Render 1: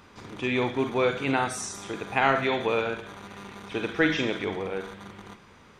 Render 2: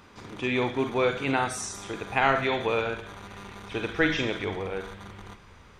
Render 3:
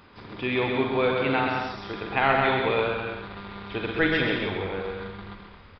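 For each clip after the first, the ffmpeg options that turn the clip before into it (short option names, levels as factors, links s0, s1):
-af "asubboost=boost=4:cutoff=95"
-af "aecho=1:1:130|214.5|269.4|305.1|328.3:0.631|0.398|0.251|0.158|0.1,aresample=11025,aresample=44100"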